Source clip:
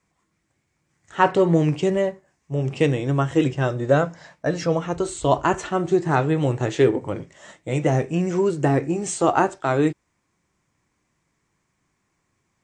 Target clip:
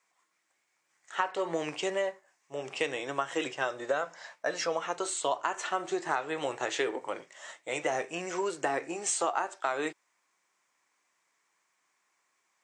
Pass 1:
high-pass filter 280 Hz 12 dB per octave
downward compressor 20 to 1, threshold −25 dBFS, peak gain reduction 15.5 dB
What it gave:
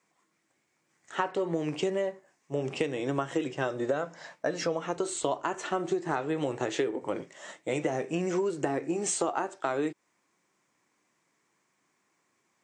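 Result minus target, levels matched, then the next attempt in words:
250 Hz band +6.0 dB
high-pass filter 730 Hz 12 dB per octave
downward compressor 20 to 1, threshold −25 dBFS, peak gain reduction 13.5 dB

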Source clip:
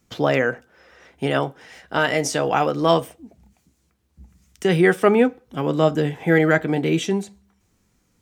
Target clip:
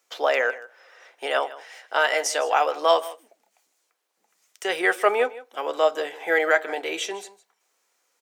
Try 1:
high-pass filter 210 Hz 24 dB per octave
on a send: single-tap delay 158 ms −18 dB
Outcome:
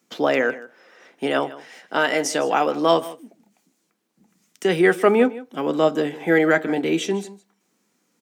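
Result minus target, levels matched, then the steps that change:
250 Hz band +13.5 dB
change: high-pass filter 510 Hz 24 dB per octave

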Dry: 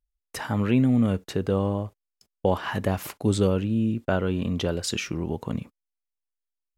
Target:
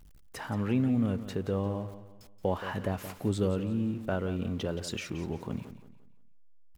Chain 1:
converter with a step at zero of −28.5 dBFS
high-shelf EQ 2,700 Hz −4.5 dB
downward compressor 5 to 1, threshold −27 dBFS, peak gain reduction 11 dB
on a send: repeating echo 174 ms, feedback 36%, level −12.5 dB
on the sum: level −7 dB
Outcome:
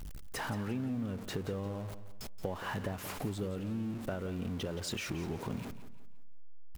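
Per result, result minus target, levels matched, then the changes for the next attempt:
downward compressor: peak gain reduction +11 dB; converter with a step at zero: distortion +11 dB
remove: downward compressor 5 to 1, threshold −27 dBFS, peak gain reduction 11 dB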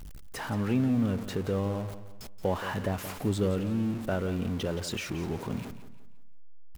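converter with a step at zero: distortion +11 dB
change: converter with a step at zero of −40.5 dBFS

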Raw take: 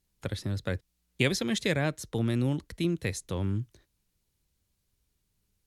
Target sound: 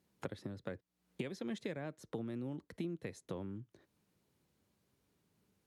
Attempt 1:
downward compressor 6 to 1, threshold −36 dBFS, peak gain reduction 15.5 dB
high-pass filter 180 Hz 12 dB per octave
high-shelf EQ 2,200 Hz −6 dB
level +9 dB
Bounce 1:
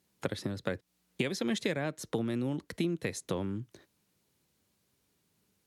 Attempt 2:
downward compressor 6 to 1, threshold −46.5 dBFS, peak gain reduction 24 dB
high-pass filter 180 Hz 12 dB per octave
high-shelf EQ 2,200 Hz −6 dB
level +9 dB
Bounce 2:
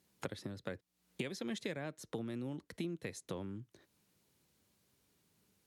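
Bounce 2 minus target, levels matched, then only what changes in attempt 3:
4,000 Hz band +5.5 dB
change: high-shelf EQ 2,200 Hz −14.5 dB

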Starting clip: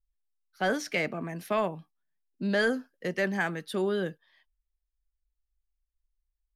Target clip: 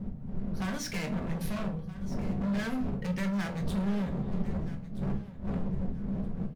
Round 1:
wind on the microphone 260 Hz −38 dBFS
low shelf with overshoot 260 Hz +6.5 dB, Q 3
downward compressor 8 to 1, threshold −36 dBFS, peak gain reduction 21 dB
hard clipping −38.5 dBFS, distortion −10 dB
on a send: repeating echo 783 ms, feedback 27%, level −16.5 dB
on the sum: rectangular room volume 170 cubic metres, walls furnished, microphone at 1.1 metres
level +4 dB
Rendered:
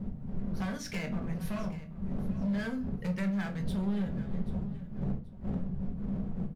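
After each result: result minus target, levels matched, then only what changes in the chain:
echo 490 ms early; downward compressor: peak gain reduction +7.5 dB
change: repeating echo 1,273 ms, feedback 27%, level −16.5 dB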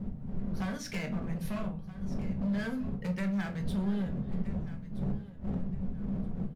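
downward compressor: peak gain reduction +7.5 dB
change: downward compressor 8 to 1, threshold −27.5 dBFS, peak gain reduction 13.5 dB

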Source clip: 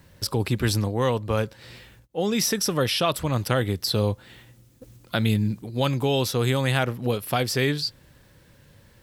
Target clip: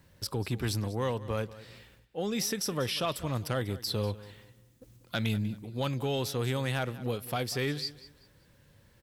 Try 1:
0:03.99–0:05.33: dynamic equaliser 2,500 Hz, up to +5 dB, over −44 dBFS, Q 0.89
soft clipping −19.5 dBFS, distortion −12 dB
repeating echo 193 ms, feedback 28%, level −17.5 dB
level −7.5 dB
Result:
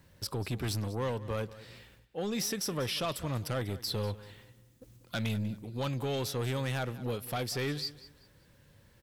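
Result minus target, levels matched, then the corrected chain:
soft clipping: distortion +9 dB
0:03.99–0:05.33: dynamic equaliser 2,500 Hz, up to +5 dB, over −44 dBFS, Q 0.89
soft clipping −11.5 dBFS, distortion −22 dB
repeating echo 193 ms, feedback 28%, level −17.5 dB
level −7.5 dB

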